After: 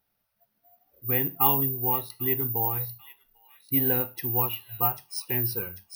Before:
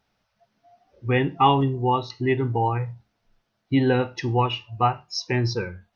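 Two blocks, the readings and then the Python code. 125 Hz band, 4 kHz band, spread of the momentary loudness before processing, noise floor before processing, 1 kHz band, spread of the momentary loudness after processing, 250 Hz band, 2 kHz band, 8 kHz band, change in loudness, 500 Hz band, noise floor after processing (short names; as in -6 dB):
-9.0 dB, -8.5 dB, 9 LU, -75 dBFS, -9.0 dB, 9 LU, -9.0 dB, -9.0 dB, n/a, -1.5 dB, -9.0 dB, -77 dBFS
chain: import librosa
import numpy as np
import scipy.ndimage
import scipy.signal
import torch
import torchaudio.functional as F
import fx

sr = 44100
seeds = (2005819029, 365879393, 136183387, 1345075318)

y = fx.echo_wet_highpass(x, sr, ms=793, feedback_pct=51, hz=4100.0, wet_db=-4)
y = (np.kron(y[::3], np.eye(3)[0]) * 3)[:len(y)]
y = F.gain(torch.from_numpy(y), -9.0).numpy()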